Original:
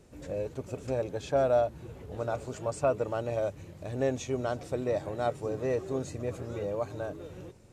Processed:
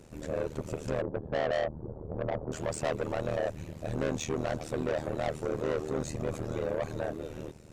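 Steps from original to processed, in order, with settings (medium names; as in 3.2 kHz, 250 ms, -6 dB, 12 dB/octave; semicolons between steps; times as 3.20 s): 1.01–2.52 s: inverse Chebyshev low-pass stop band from 2.5 kHz, stop band 50 dB; saturation -32 dBFS, distortion -7 dB; AM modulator 77 Hz, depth 90%; trim +8.5 dB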